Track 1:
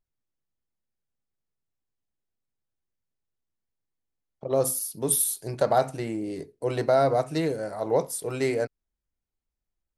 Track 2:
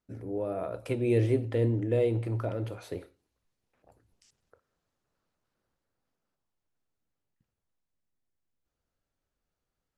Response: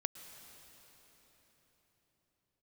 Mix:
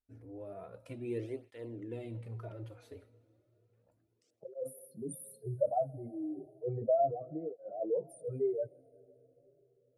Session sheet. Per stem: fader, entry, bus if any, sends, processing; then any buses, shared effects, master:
-2.5 dB, 0.00 s, send -13 dB, spectral contrast raised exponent 3; LPF 1500 Hz 6 dB/oct; flange 0.34 Hz, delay 5.9 ms, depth 5.1 ms, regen -57%
-12.5 dB, 0.00 s, send -11 dB, dry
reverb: on, RT60 4.5 s, pre-delay 0.103 s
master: tape flanging out of phase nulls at 0.33 Hz, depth 6 ms

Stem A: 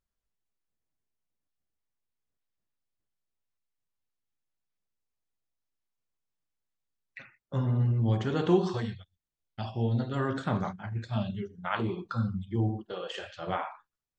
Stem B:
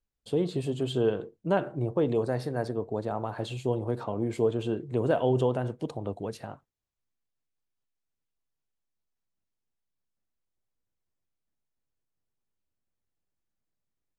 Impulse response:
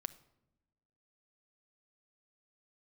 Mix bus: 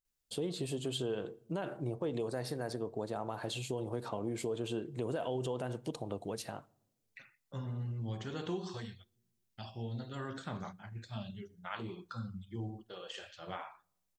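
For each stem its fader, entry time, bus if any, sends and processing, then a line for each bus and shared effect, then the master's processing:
-13.0 dB, 0.00 s, send -9 dB, dry
-5.5 dB, 0.05 s, send -6 dB, bell 85 Hz -3 dB 1.4 oct; limiter -20 dBFS, peak gain reduction 7.5 dB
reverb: on, pre-delay 6 ms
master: high shelf 3100 Hz +11 dB; compressor 2:1, threshold -36 dBFS, peak gain reduction 5.5 dB

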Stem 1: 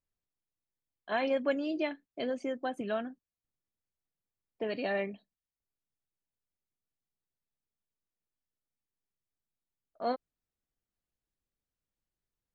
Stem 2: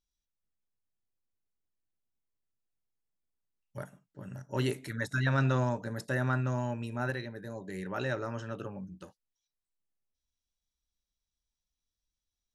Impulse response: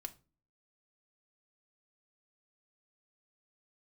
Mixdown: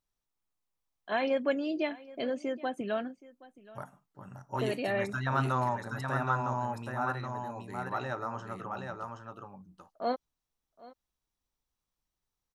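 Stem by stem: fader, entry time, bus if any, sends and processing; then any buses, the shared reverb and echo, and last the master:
+1.0 dB, 0.00 s, no send, echo send -20.5 dB, dry
-5.0 dB, 0.00 s, no send, echo send -4.5 dB, band shelf 960 Hz +11.5 dB 1.1 oct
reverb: off
echo: echo 0.773 s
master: dry

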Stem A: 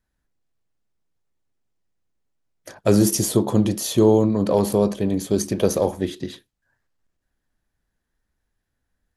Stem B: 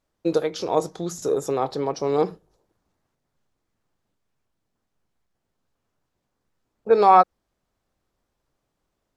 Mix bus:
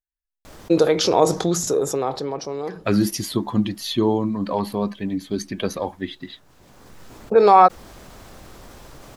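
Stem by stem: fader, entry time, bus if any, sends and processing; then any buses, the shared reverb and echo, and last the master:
-2.0 dB, 0.00 s, no send, per-bin expansion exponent 1.5; graphic EQ 125/250/500/1000/2000/4000/8000 Hz -3/+5/-6/+6/+7/+8/-9 dB
+1.5 dB, 0.45 s, no send, fast leveller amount 50%; auto duck -14 dB, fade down 1.30 s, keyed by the first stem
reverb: off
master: dry

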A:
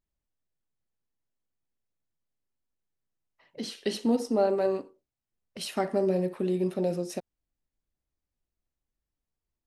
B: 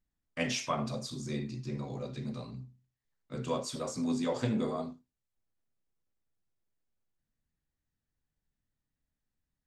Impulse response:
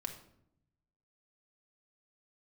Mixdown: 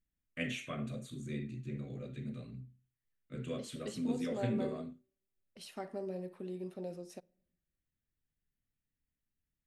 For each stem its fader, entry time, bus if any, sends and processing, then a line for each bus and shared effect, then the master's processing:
-15.0 dB, 0.00 s, send -19 dB, dry
-3.0 dB, 0.00 s, no send, fixed phaser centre 2200 Hz, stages 4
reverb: on, RT60 0.75 s, pre-delay 4 ms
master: dry

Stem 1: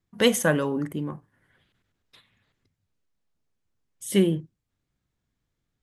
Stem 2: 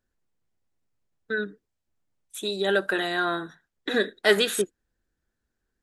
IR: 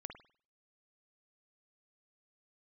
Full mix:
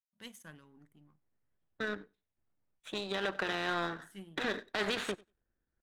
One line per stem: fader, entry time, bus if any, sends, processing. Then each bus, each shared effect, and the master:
-16.0 dB, 0.00 s, no send, no echo send, bell 530 Hz -13 dB 1.2 oct
-2.0 dB, 0.50 s, no send, echo send -19.5 dB, LPF 2000 Hz 12 dB/oct; spectral compressor 2:1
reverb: off
echo: feedback echo 94 ms, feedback 17%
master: power-law curve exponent 1.4; limiter -20.5 dBFS, peak gain reduction 9.5 dB

